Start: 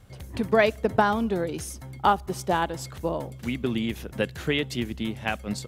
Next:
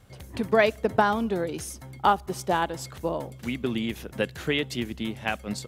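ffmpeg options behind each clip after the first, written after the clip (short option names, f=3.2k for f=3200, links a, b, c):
-af "lowshelf=f=140:g=-5"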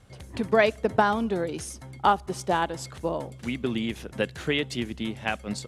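-af "lowpass=f=11k:w=0.5412,lowpass=f=11k:w=1.3066"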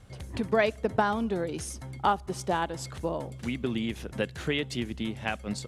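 -filter_complex "[0:a]lowshelf=f=130:g=4.5,asplit=2[a][b];[b]acompressor=threshold=-33dB:ratio=6,volume=-0.5dB[c];[a][c]amix=inputs=2:normalize=0,volume=-5.5dB"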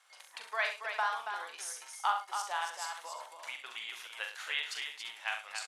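-filter_complex "[0:a]highpass=f=910:w=0.5412,highpass=f=910:w=1.3066,asplit=2[a][b];[b]aecho=0:1:41|67|105|279|348:0.473|0.299|0.178|0.473|0.188[c];[a][c]amix=inputs=2:normalize=0,volume=-3dB"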